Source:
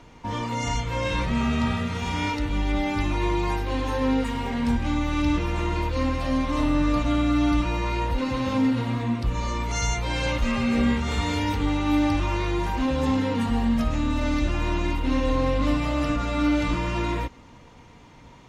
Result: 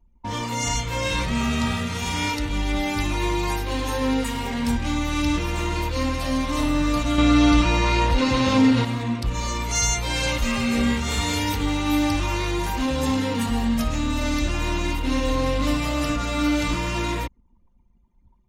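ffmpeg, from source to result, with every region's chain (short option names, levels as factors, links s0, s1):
-filter_complex "[0:a]asettb=1/sr,asplit=3[s0][s1][s2];[s0]atrim=end=7.184[s3];[s1]atrim=start=7.18:end=8.85,asetpts=PTS-STARTPTS,afade=t=in:d=0.004:c=qsin,afade=t=out:st=1.666:d=0.004:c=qsin,lowpass=6400,acontrast=57,tremolo=f=170:d=0.182[s4];[s2]atrim=start=8.846[s5];[s3][s4]acrossfade=d=0.004:c1=hsin:c2=qsin[s6];[s6][s5]acrossfade=d=0.004:c1=qsin:c2=hsin,aemphasis=mode=production:type=75kf,anlmdn=2.51"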